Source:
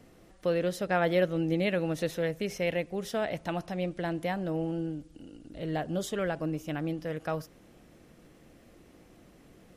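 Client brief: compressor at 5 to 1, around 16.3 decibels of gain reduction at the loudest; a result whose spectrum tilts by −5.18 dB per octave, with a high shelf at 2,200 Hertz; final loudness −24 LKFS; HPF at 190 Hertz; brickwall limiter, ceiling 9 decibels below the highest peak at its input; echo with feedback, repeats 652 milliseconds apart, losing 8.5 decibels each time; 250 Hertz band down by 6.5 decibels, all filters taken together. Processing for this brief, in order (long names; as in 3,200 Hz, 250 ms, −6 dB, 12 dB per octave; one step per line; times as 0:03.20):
high-pass filter 190 Hz
parametric band 250 Hz −8 dB
high-shelf EQ 2,200 Hz −8 dB
downward compressor 5 to 1, threshold −43 dBFS
brickwall limiter −38 dBFS
repeating echo 652 ms, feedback 38%, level −8.5 dB
level +24 dB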